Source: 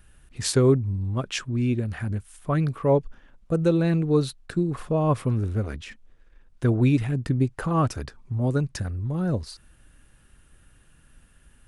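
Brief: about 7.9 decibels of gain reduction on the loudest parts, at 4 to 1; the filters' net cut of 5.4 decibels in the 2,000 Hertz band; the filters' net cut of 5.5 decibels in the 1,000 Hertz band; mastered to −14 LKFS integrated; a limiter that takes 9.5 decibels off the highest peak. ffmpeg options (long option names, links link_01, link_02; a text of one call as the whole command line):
ffmpeg -i in.wav -af "equalizer=frequency=1000:width_type=o:gain=-5.5,equalizer=frequency=2000:width_type=o:gain=-5.5,acompressor=threshold=-25dB:ratio=4,volume=18dB,alimiter=limit=-4.5dB:level=0:latency=1" out.wav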